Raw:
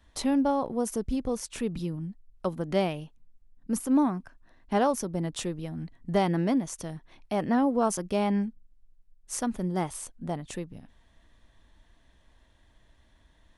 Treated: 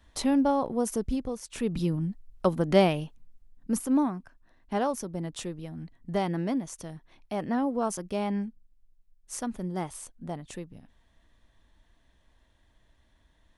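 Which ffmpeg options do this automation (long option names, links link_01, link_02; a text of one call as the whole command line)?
ffmpeg -i in.wav -af "volume=13.5dB,afade=type=out:start_time=1.08:duration=0.32:silence=0.398107,afade=type=in:start_time=1.4:duration=0.5:silence=0.237137,afade=type=out:start_time=3.02:duration=1.13:silence=0.354813" out.wav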